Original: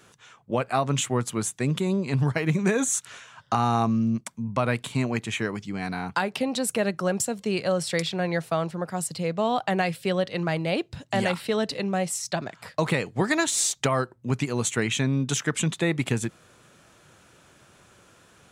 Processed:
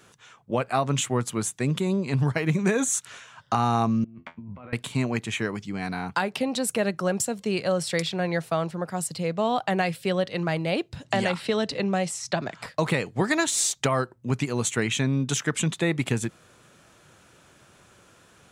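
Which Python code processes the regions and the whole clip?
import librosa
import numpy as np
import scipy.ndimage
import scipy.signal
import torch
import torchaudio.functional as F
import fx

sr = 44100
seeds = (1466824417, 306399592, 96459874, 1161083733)

y = fx.chain(x, sr, fx.lowpass(hz=2800.0, slope=24),
    fx.over_compress(threshold_db=-34.0, ratio=-1.0),
    fx.comb_fb(f0_hz=84.0, decay_s=0.17, harmonics='all', damping=0.0, mix_pct=90), at=(4.04, 4.73))
y = fx.chain(y, sr, fx.lowpass(hz=8200.0, slope=12),
    fx.band_squash(depth_pct=70), at=(11.04, 12.66))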